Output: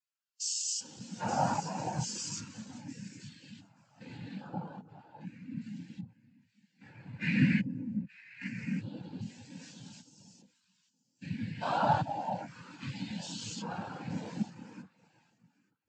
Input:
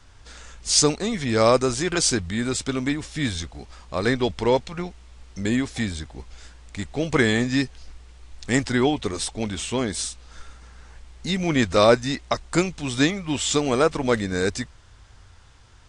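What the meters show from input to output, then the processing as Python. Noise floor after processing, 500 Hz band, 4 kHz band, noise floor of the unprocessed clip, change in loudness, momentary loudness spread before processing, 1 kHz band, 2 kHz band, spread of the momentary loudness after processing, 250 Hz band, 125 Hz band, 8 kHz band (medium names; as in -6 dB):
-77 dBFS, -21.0 dB, -16.5 dB, -50 dBFS, -12.5 dB, 17 LU, -7.0 dB, -14.0 dB, 20 LU, -12.5 dB, -9.5 dB, -13.0 dB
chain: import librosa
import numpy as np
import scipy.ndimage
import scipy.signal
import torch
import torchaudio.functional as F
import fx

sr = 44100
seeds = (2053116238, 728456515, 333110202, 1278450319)

p1 = fx.spec_steps(x, sr, hold_ms=400)
p2 = fx.tilt_eq(p1, sr, slope=2.0)
p3 = fx.hum_notches(p2, sr, base_hz=50, count=3)
p4 = p3 + fx.echo_alternate(p3, sr, ms=440, hz=970.0, feedback_pct=59, wet_db=-3.0, dry=0)
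p5 = fx.noise_vocoder(p4, sr, seeds[0], bands=8)
p6 = fx.peak_eq(p5, sr, hz=400.0, db=-12.5, octaves=1.0)
y = fx.spectral_expand(p6, sr, expansion=2.5)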